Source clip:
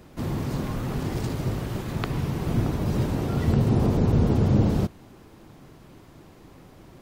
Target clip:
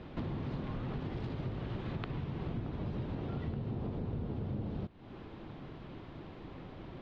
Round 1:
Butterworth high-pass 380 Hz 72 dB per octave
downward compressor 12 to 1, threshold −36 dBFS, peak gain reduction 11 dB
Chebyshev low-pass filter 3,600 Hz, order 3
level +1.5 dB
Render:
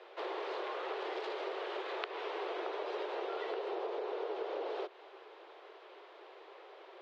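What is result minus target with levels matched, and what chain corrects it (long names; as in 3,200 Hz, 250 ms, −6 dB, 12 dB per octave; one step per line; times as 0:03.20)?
500 Hz band +7.0 dB
downward compressor 12 to 1, threshold −36 dBFS, peak gain reduction 20.5 dB
Chebyshev low-pass filter 3,600 Hz, order 3
level +1.5 dB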